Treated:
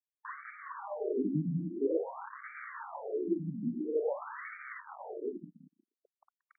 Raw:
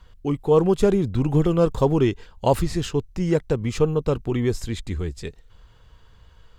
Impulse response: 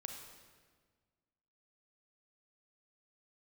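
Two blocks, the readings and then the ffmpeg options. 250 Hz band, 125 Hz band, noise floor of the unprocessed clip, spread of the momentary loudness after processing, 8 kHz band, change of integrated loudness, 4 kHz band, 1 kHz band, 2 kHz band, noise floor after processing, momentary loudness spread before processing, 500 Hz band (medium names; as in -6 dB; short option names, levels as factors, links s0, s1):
-13.0 dB, -18.5 dB, -52 dBFS, 13 LU, under -40 dB, -14.5 dB, under -40 dB, -13.0 dB, -6.5 dB, under -85 dBFS, 11 LU, -14.0 dB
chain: -filter_complex "[0:a]agate=range=0.0224:threshold=0.0126:ratio=3:detection=peak,areverse,acompressor=mode=upward:threshold=0.0891:ratio=2.5,areverse[s0];[1:a]atrim=start_sample=2205[s1];[s0][s1]afir=irnorm=-1:irlink=0,aresample=16000,acrusher=bits=4:mix=0:aa=0.5,aresample=44100,acompressor=threshold=0.0708:ratio=3,afftfilt=real='re*between(b*sr/1024,210*pow(1700/210,0.5+0.5*sin(2*PI*0.49*pts/sr))/1.41,210*pow(1700/210,0.5+0.5*sin(2*PI*0.49*pts/sr))*1.41)':imag='im*between(b*sr/1024,210*pow(1700/210,0.5+0.5*sin(2*PI*0.49*pts/sr))/1.41,210*pow(1700/210,0.5+0.5*sin(2*PI*0.49*pts/sr))*1.41)':win_size=1024:overlap=0.75"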